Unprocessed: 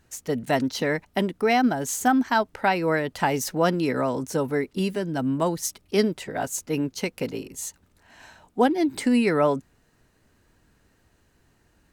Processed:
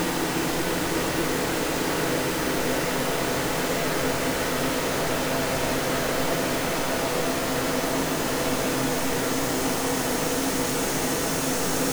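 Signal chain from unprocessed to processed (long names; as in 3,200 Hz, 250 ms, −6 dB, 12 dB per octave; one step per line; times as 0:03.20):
sign of each sample alone
echo that builds up and dies away 116 ms, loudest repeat 5, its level −11 dB
extreme stretch with random phases 27×, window 0.50 s, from 0:03.84
level −2 dB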